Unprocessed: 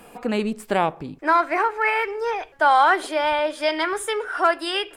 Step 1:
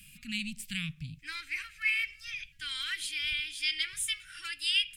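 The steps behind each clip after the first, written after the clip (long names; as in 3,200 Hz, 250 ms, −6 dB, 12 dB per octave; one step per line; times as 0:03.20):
elliptic band-stop filter 150–2,500 Hz, stop band 60 dB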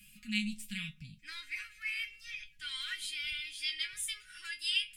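tuned comb filter 210 Hz, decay 0.16 s, harmonics all, mix 90%
level +5 dB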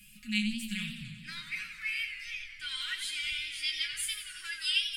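feedback echo with a swinging delay time 91 ms, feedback 71%, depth 137 cents, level −9 dB
level +2.5 dB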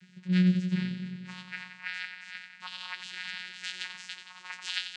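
channel vocoder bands 8, saw 182 Hz
level +4 dB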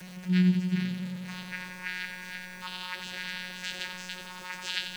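converter with a step at zero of −40.5 dBFS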